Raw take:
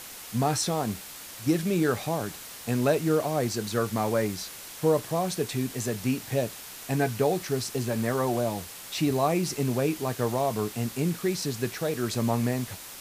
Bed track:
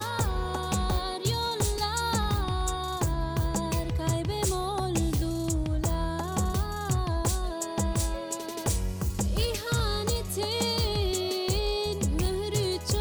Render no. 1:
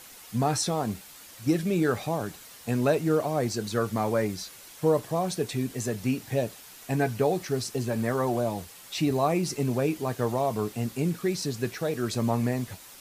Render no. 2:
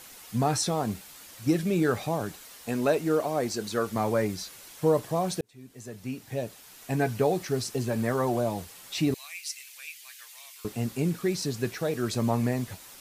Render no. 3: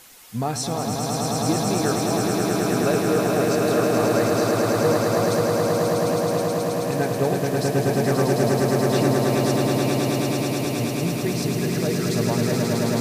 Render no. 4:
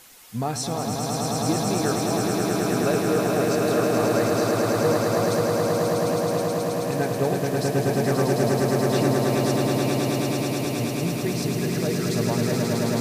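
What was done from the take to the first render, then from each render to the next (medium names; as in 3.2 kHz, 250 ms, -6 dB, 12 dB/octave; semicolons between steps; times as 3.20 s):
noise reduction 7 dB, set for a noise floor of -43 dBFS
2.34–3.96 s: peaking EQ 120 Hz -8.5 dB 1.1 oct; 5.41–7.13 s: fade in; 9.14–10.65 s: Chebyshev high-pass 2.2 kHz, order 3
echo with a slow build-up 107 ms, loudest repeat 8, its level -4 dB
trim -1.5 dB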